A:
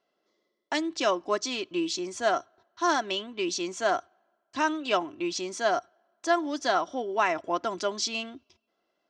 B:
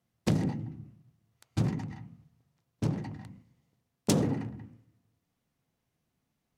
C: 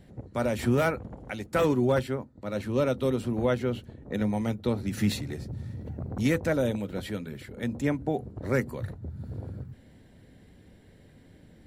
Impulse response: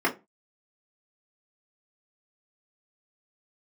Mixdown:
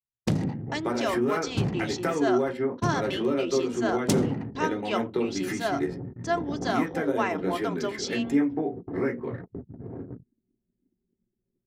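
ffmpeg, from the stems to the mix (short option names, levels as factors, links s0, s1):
-filter_complex "[0:a]acontrast=22,volume=0.335,asplit=3[s0][s1][s2];[s1]volume=0.0631[s3];[1:a]volume=1.19[s4];[2:a]acompressor=threshold=0.0316:ratio=16,adelay=500,volume=0.794,asplit=2[s5][s6];[s6]volume=0.501[s7];[s2]apad=whole_len=536644[s8];[s5][s8]sidechaingate=range=0.0224:threshold=0.00158:ratio=16:detection=peak[s9];[3:a]atrim=start_sample=2205[s10];[s3][s7]amix=inputs=2:normalize=0[s11];[s11][s10]afir=irnorm=-1:irlink=0[s12];[s0][s4][s9][s12]amix=inputs=4:normalize=0,agate=range=0.282:threshold=0.0141:ratio=16:detection=peak,anlmdn=0.0631"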